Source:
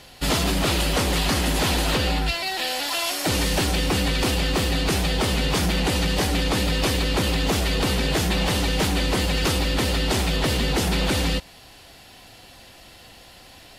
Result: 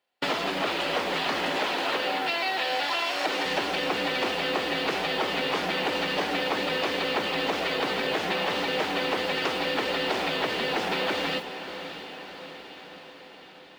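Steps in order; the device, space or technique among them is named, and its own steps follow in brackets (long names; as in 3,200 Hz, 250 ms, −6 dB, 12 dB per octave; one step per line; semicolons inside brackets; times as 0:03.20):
baby monitor (band-pass filter 400–3,000 Hz; downward compressor, threshold −32 dBFS, peak gain reduction 10.5 dB; white noise bed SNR 26 dB; noise gate −39 dBFS, range −37 dB)
0:01.58–0:03.46: high-pass filter 240 Hz 12 dB per octave
feedback delay with all-pass diffusion 641 ms, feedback 62%, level −11 dB
level +7 dB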